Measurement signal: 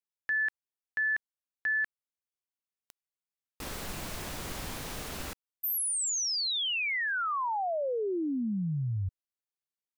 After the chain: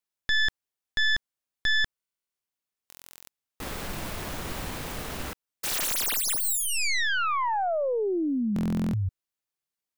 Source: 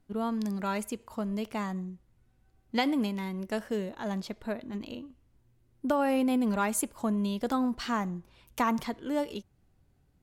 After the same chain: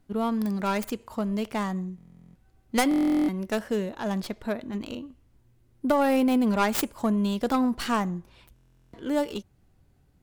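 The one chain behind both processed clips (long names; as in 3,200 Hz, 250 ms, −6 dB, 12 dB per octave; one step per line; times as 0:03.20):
stylus tracing distortion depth 0.37 ms
buffer that repeats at 0:01.96/0:02.89/0:08.54, samples 1,024, times 16
level +4.5 dB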